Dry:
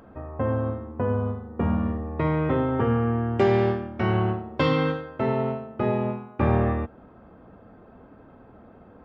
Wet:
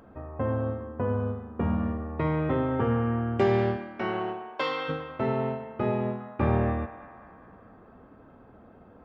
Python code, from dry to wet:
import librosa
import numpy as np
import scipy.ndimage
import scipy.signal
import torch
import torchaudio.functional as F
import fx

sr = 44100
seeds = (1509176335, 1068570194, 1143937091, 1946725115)

p1 = fx.highpass(x, sr, hz=fx.line((3.76, 190.0), (4.88, 750.0)), slope=12, at=(3.76, 4.88), fade=0.02)
p2 = p1 + fx.echo_banded(p1, sr, ms=203, feedback_pct=70, hz=1300.0, wet_db=-11.5, dry=0)
y = p2 * 10.0 ** (-3.0 / 20.0)